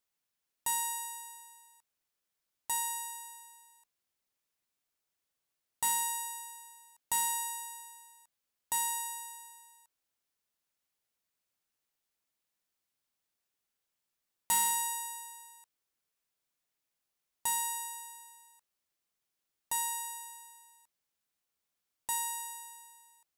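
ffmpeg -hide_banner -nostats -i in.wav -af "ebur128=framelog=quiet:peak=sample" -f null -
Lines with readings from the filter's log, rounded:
Integrated loudness:
  I:         -33.6 LUFS
  Threshold: -45.7 LUFS
Loudness range:
  LRA:         6.0 LU
  Threshold: -57.7 LUFS
  LRA low:   -41.0 LUFS
  LRA high:  -34.9 LUFS
Sample peak:
  Peak:      -22.5 dBFS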